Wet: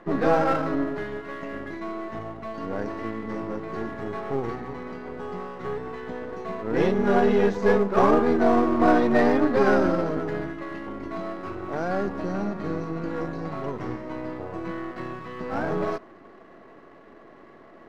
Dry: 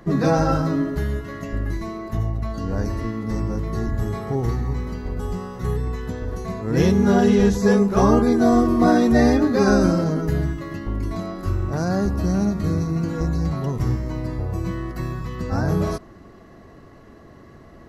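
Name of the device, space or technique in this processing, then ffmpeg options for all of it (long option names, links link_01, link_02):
crystal radio: -af "highpass=320,lowpass=2500,aeval=exprs='if(lt(val(0),0),0.447*val(0),val(0))':channel_layout=same,volume=3dB"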